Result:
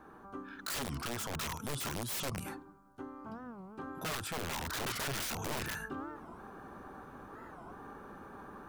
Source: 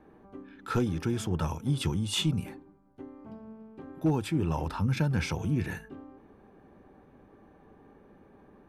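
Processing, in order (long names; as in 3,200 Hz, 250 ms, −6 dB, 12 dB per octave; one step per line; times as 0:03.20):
drawn EQ curve 150 Hz 0 dB, 580 Hz +1 dB, 1,400 Hz +15 dB, 2,000 Hz +1 dB, 6,900 Hz +11 dB
speech leveller within 3 dB 2 s
wrap-around overflow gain 23.5 dB
brickwall limiter −33 dBFS, peak gain reduction 9.5 dB
wow of a warped record 45 rpm, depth 250 cents
level +1 dB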